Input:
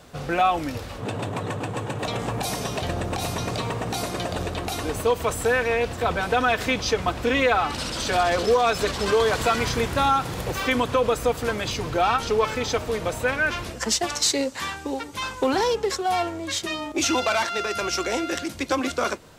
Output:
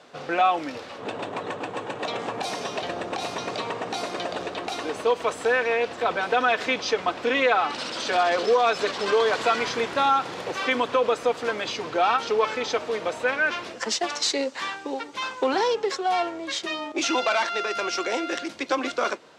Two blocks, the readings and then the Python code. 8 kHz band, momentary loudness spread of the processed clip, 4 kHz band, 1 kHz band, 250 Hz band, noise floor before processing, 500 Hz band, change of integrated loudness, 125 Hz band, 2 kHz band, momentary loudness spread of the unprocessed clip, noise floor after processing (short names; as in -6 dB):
-6.0 dB, 9 LU, -1.0 dB, 0.0 dB, -4.5 dB, -36 dBFS, -0.5 dB, -1.0 dB, -16.0 dB, 0.0 dB, 8 LU, -40 dBFS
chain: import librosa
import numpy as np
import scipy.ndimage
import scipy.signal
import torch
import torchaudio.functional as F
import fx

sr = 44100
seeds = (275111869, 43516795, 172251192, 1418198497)

y = fx.bandpass_edges(x, sr, low_hz=310.0, high_hz=5200.0)